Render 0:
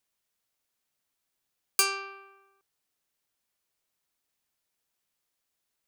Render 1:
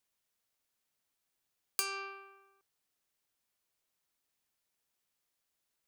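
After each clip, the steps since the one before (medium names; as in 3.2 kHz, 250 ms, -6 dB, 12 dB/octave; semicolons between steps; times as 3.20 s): compression 5:1, threshold -29 dBFS, peak gain reduction 10 dB; trim -2 dB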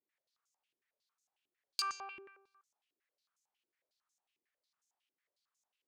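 step-sequenced band-pass 11 Hz 350–6600 Hz; trim +8 dB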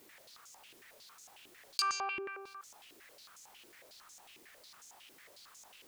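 level flattener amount 50%; trim +2.5 dB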